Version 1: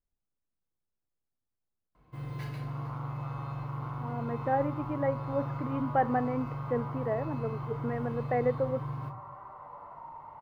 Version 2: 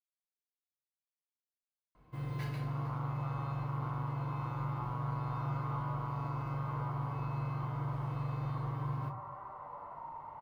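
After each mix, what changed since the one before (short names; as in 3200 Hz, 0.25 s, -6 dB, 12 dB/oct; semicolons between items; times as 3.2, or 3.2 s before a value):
speech: muted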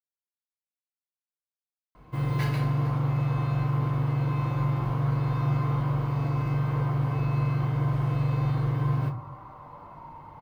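first sound +11.5 dB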